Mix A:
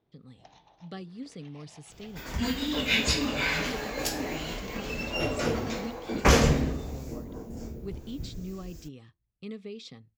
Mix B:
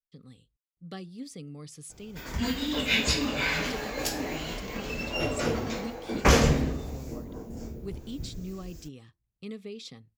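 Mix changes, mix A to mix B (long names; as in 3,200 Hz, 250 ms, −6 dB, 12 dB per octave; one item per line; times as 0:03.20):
speech: remove high-frequency loss of the air 66 metres
first sound: muted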